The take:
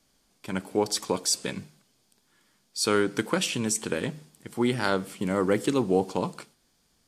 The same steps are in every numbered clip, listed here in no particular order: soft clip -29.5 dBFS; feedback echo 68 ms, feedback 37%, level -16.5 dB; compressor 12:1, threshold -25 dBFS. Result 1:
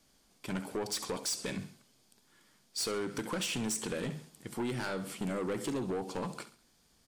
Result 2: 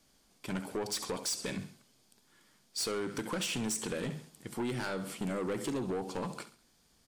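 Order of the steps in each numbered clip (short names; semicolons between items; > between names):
compressor > feedback echo > soft clip; feedback echo > compressor > soft clip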